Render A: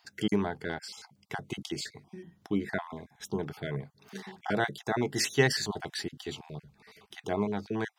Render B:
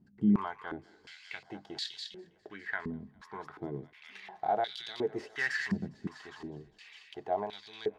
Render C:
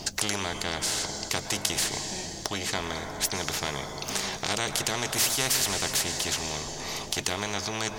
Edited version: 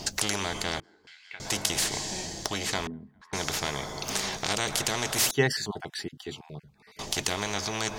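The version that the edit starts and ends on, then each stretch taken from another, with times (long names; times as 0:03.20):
C
0:00.80–0:01.40: punch in from B
0:02.87–0:03.33: punch in from B
0:05.31–0:06.99: punch in from A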